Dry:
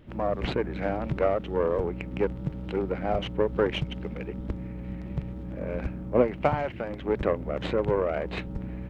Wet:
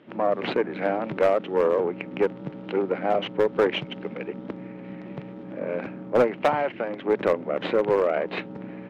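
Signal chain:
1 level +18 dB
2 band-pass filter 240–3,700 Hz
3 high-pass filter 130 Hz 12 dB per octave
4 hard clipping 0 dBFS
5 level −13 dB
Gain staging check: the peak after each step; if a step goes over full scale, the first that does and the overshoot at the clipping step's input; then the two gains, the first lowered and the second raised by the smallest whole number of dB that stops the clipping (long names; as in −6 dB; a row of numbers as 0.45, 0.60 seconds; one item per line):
+10.5, +8.0, +9.0, 0.0, −13.0 dBFS
step 1, 9.0 dB
step 1 +9 dB, step 5 −4 dB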